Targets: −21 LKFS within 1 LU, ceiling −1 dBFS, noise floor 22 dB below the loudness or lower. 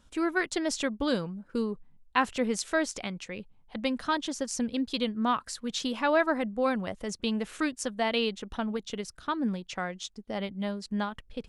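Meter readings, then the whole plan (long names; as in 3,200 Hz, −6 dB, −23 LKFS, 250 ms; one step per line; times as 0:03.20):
integrated loudness −31.0 LKFS; sample peak −8.5 dBFS; target loudness −21.0 LKFS
→ level +10 dB
brickwall limiter −1 dBFS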